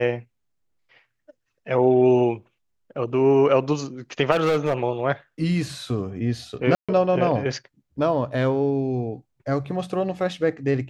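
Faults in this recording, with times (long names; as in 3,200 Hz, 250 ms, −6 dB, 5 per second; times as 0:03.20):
0:04.31–0:04.83: clipping −16 dBFS
0:06.75–0:06.89: drop-out 136 ms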